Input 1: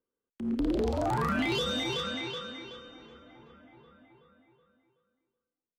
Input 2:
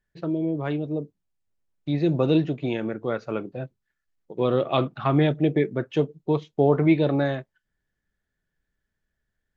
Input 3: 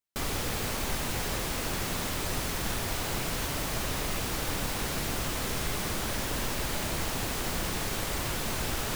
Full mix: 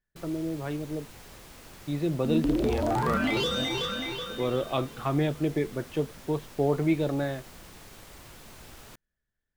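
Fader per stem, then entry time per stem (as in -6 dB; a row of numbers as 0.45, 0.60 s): +2.0, -6.0, -16.5 dB; 1.85, 0.00, 0.00 s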